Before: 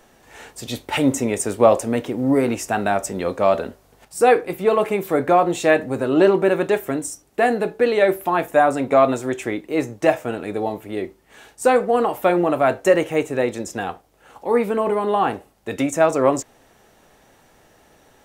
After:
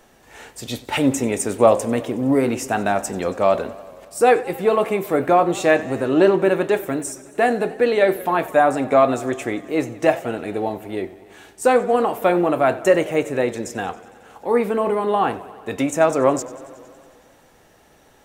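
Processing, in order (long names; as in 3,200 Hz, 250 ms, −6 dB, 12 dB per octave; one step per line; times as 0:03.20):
feedback echo with a swinging delay time 92 ms, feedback 75%, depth 109 cents, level −19 dB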